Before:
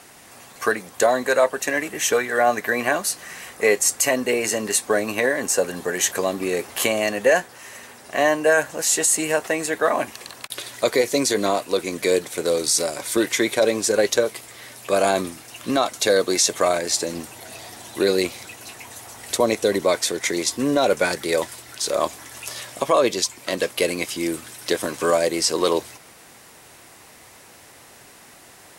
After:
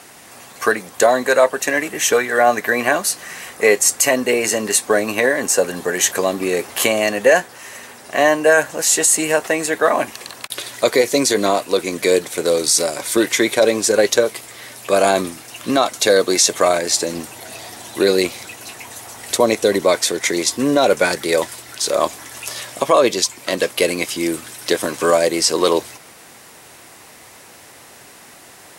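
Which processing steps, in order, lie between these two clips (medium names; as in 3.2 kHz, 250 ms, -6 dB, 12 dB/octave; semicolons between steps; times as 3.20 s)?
bass shelf 70 Hz -7 dB; trim +4.5 dB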